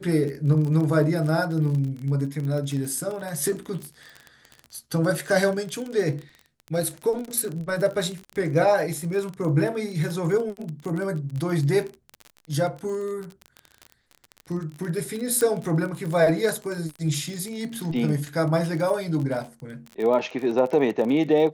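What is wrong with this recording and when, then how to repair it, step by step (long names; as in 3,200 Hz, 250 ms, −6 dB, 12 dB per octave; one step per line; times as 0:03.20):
surface crackle 32 per second −29 dBFS
0:15.41: click −12 dBFS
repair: click removal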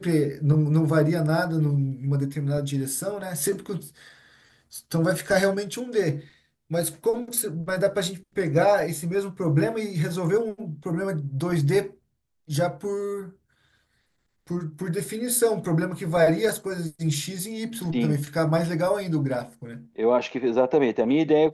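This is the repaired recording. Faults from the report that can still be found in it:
none of them is left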